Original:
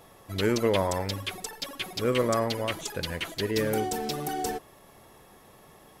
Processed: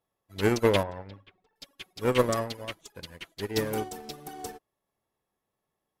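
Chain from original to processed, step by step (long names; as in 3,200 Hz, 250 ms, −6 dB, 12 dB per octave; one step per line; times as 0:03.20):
harmonic generator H 4 −18 dB, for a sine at −13 dBFS
0:00.83–0:01.56: high-frequency loss of the air 350 metres
expander for the loud parts 2.5 to 1, over −44 dBFS
level +4.5 dB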